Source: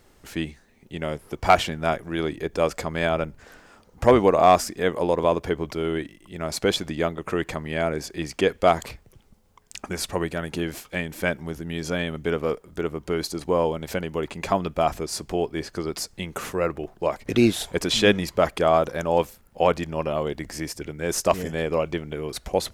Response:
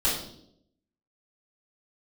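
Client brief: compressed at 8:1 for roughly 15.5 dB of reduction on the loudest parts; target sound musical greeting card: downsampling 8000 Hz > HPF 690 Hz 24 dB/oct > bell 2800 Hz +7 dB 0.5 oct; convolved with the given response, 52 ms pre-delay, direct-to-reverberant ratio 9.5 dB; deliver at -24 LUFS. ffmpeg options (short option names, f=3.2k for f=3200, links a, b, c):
-filter_complex "[0:a]acompressor=threshold=-27dB:ratio=8,asplit=2[a][b];[1:a]atrim=start_sample=2205,adelay=52[c];[b][c]afir=irnorm=-1:irlink=0,volume=-20.5dB[d];[a][d]amix=inputs=2:normalize=0,aresample=8000,aresample=44100,highpass=f=690:w=0.5412,highpass=f=690:w=1.3066,equalizer=f=2.8k:t=o:w=0.5:g=7,volume=12.5dB"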